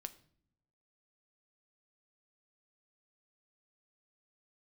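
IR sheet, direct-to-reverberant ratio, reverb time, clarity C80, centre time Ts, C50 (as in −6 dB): 9.5 dB, non-exponential decay, 20.5 dB, 5 ms, 17.0 dB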